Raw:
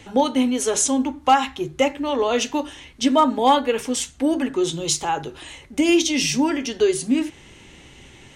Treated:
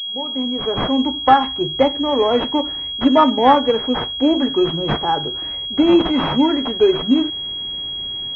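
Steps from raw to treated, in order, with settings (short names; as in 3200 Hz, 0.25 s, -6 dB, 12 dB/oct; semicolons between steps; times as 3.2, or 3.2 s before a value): opening faded in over 1.18 s; pulse-width modulation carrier 3300 Hz; gain +4.5 dB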